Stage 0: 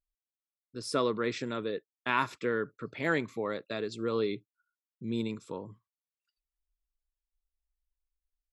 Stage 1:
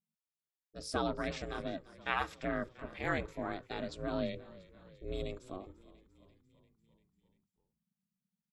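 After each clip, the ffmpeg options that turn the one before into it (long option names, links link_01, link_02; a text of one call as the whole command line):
ffmpeg -i in.wav -filter_complex "[0:a]bandreject=frequency=50:width_type=h:width=6,bandreject=frequency=100:width_type=h:width=6,bandreject=frequency=150:width_type=h:width=6,bandreject=frequency=200:width_type=h:width=6,bandreject=frequency=250:width_type=h:width=6,bandreject=frequency=300:width_type=h:width=6,bandreject=frequency=350:width_type=h:width=6,aeval=exprs='val(0)*sin(2*PI*190*n/s)':channel_layout=same,asplit=7[link_01][link_02][link_03][link_04][link_05][link_06][link_07];[link_02]adelay=344,afreqshift=-40,volume=-19.5dB[link_08];[link_03]adelay=688,afreqshift=-80,volume=-23.2dB[link_09];[link_04]adelay=1032,afreqshift=-120,volume=-27dB[link_10];[link_05]adelay=1376,afreqshift=-160,volume=-30.7dB[link_11];[link_06]adelay=1720,afreqshift=-200,volume=-34.5dB[link_12];[link_07]adelay=2064,afreqshift=-240,volume=-38.2dB[link_13];[link_01][link_08][link_09][link_10][link_11][link_12][link_13]amix=inputs=7:normalize=0,volume=-2dB" out.wav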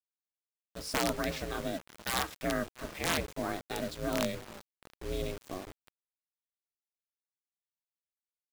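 ffmpeg -i in.wav -af "aeval=exprs='(mod(15*val(0)+1,2)-1)/15':channel_layout=same,acrusher=bits=7:mix=0:aa=0.000001,volume=3.5dB" out.wav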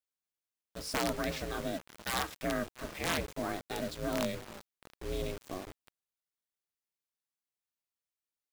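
ffmpeg -i in.wav -af "asoftclip=type=tanh:threshold=-22.5dB" out.wav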